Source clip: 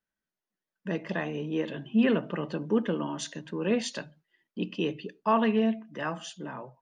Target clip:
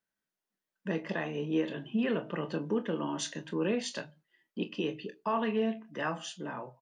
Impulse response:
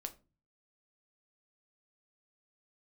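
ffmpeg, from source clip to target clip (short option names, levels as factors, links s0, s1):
-filter_complex "[0:a]lowshelf=f=76:g=-10,alimiter=limit=0.0841:level=0:latency=1:release=366,asplit=2[s0][s1];[s1]aecho=0:1:25|41:0.299|0.158[s2];[s0][s2]amix=inputs=2:normalize=0"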